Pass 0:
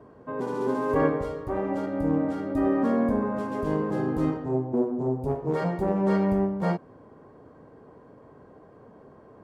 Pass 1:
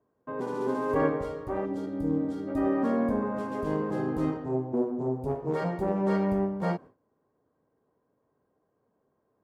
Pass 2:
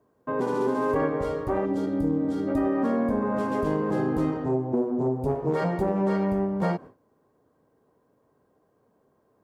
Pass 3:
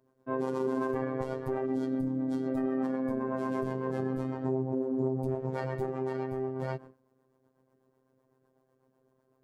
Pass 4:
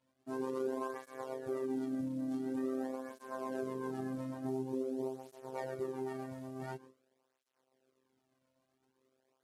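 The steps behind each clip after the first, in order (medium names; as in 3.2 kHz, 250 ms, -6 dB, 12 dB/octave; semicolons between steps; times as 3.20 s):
time-frequency box 1.65–2.48 s, 530–3100 Hz -9 dB; gate with hold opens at -38 dBFS; bass shelf 170 Hz -3 dB; trim -2 dB
compression 5:1, threshold -29 dBFS, peak gain reduction 9 dB; trim +7.5 dB
rotary cabinet horn 8 Hz; peak limiter -22 dBFS, peak gain reduction 7.5 dB; robot voice 131 Hz
CVSD coder 64 kbps; peaking EQ 150 Hz -4.5 dB 1.2 oct; cancelling through-zero flanger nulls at 0.47 Hz, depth 2.6 ms; trim -3.5 dB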